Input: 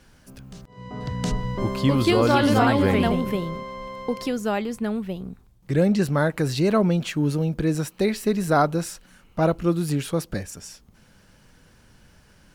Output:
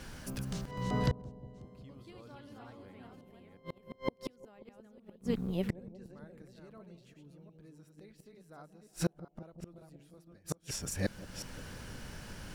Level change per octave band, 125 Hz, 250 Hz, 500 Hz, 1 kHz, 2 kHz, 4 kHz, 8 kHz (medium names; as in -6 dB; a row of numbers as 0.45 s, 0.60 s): -15.0 dB, -18.0 dB, -19.5 dB, -21.0 dB, -18.0 dB, -15.5 dB, -8.5 dB